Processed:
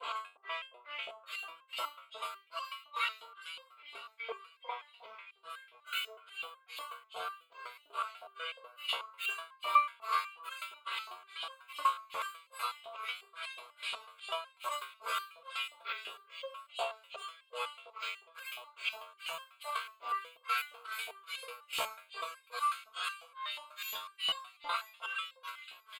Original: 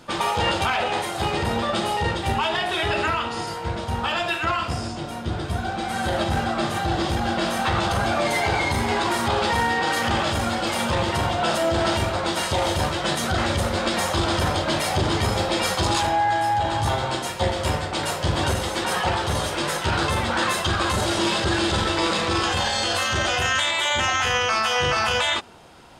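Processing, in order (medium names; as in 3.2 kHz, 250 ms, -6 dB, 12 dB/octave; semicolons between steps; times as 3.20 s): granulator 245 ms, grains 2.4 per s, pitch spread up and down by 12 st; comb 4.4 ms, depth 67%; upward compressor, threshold -26 dBFS; static phaser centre 1.2 kHz, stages 8; two-band feedback delay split 1.2 kHz, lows 97 ms, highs 468 ms, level -11 dB; LFO high-pass saw up 2.8 Hz 680–3300 Hz; resonator arpeggio 8.1 Hz 68–530 Hz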